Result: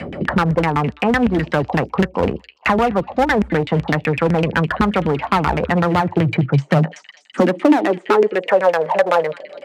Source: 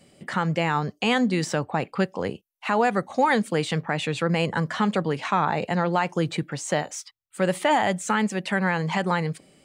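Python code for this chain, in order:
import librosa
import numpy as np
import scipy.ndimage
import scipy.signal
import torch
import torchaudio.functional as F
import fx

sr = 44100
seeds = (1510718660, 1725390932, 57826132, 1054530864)

p1 = fx.rider(x, sr, range_db=10, speed_s=0.5)
p2 = x + (p1 * 10.0 ** (-1.0 / 20.0))
p3 = fx.filter_lfo_lowpass(p2, sr, shape='saw_down', hz=7.9, low_hz=220.0, high_hz=2600.0, q=2.6)
p4 = p3 + fx.echo_stepped(p3, sr, ms=208, hz=3600.0, octaves=0.7, feedback_pct=70, wet_db=-8.0, dry=0)
p5 = fx.clip_asym(p4, sr, top_db=-17.5, bottom_db=-5.0)
p6 = fx.filter_sweep_highpass(p5, sr, from_hz=62.0, to_hz=570.0, start_s=5.42, end_s=8.7, q=6.8)
p7 = fx.band_squash(p6, sr, depth_pct=70)
y = p7 * 10.0 ** (-1.0 / 20.0)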